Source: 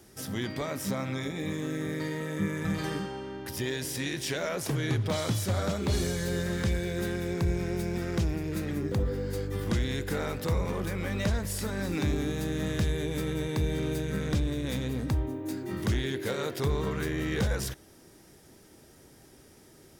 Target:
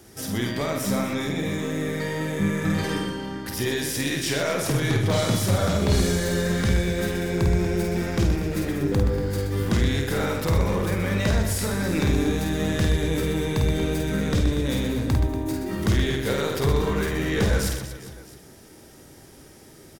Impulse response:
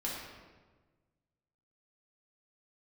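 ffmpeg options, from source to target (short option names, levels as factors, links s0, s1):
-af "aeval=exprs='0.1*(cos(1*acos(clip(val(0)/0.1,-1,1)))-cos(1*PI/2))+0.00282*(cos(4*acos(clip(val(0)/0.1,-1,1)))-cos(4*PI/2))':c=same,aecho=1:1:50|125|237.5|406.2|659.4:0.631|0.398|0.251|0.158|0.1,volume=1.78"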